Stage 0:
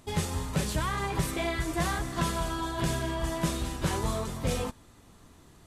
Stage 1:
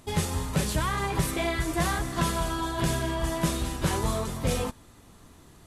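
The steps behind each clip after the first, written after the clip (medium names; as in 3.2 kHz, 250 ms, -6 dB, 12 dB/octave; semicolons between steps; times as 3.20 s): peaking EQ 11 kHz +3.5 dB 0.32 oct; trim +2.5 dB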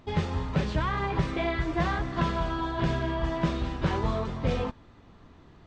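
Gaussian low-pass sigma 2.1 samples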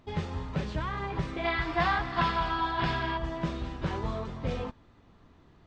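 time-frequency box 1.44–3.17 s, 670–5500 Hz +9 dB; trim -5 dB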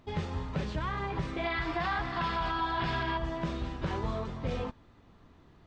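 peak limiter -22.5 dBFS, peak gain reduction 8 dB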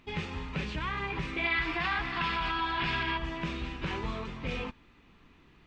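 fifteen-band graphic EQ 100 Hz -8 dB, 630 Hz -7 dB, 2.5 kHz +11 dB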